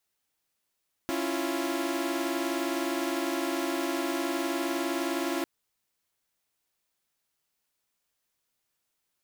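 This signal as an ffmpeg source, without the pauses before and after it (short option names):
-f lavfi -i "aevalsrc='0.0316*((2*mod(277.18*t,1)-1)+(2*mod(329.63*t,1)-1)+(2*mod(349.23*t,1)-1))':d=4.35:s=44100"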